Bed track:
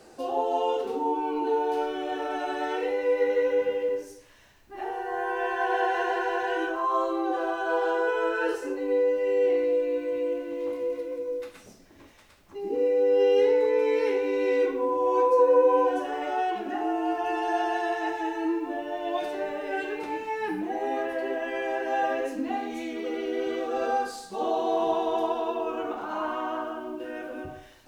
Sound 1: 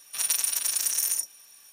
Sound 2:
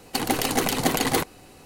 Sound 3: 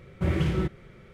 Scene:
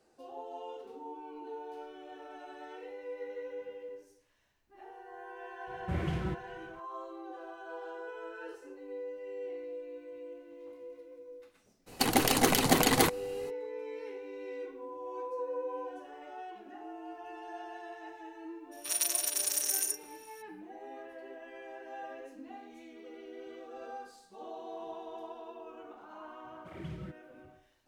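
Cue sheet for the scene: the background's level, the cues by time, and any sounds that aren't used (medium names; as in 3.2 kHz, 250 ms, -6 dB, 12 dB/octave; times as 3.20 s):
bed track -17.5 dB
5.67 s: add 3 -8.5 dB
11.86 s: add 2 -2 dB, fades 0.02 s
18.71 s: add 1 -5 dB, fades 0.02 s
26.44 s: add 3 -15 dB + cancelling through-zero flanger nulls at 1.9 Hz, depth 3.9 ms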